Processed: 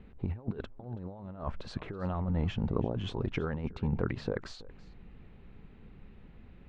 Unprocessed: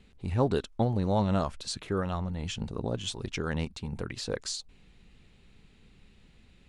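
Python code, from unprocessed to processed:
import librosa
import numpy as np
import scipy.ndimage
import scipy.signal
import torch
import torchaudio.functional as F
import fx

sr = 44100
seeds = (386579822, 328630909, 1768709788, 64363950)

p1 = scipy.signal.sosfilt(scipy.signal.butter(2, 1500.0, 'lowpass', fs=sr, output='sos'), x)
p2 = fx.over_compress(p1, sr, threshold_db=-34.0, ratio=-0.5)
p3 = p2 + fx.echo_single(p2, sr, ms=328, db=-20.5, dry=0)
y = F.gain(torch.from_numpy(p3), 1.5).numpy()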